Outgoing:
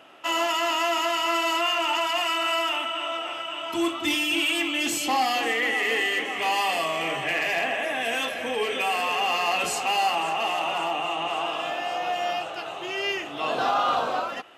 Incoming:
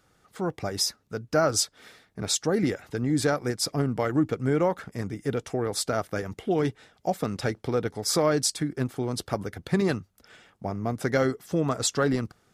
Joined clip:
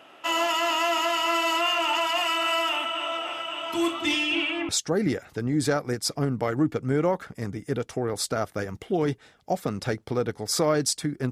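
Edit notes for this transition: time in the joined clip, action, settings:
outgoing
4.03–4.69 LPF 9100 Hz -> 1300 Hz
4.69 switch to incoming from 2.26 s

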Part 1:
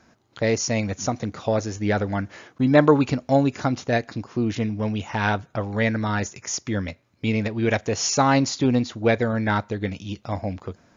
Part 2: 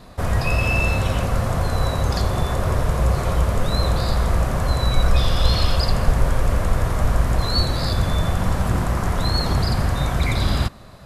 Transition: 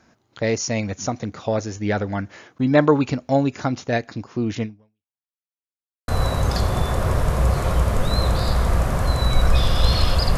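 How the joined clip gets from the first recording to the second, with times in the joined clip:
part 1
4.63–5.25 fade out exponential
5.25–6.08 mute
6.08 switch to part 2 from 1.69 s

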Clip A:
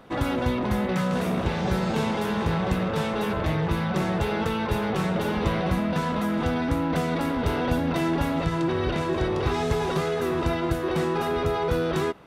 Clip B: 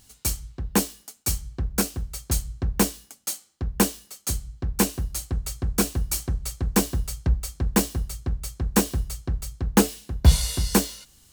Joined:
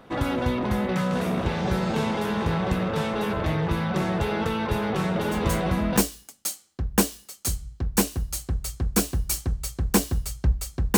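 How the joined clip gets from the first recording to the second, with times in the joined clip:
clip A
5.31 add clip B from 2.13 s 0.66 s -7 dB
5.97 switch to clip B from 2.79 s

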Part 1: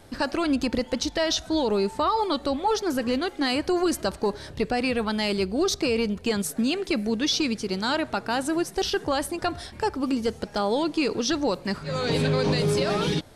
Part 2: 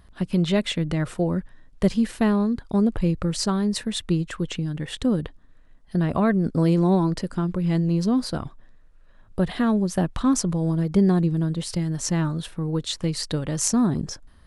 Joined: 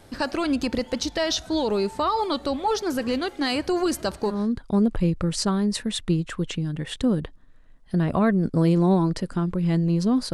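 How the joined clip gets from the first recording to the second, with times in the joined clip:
part 1
4.37 switch to part 2 from 2.38 s, crossfade 0.26 s

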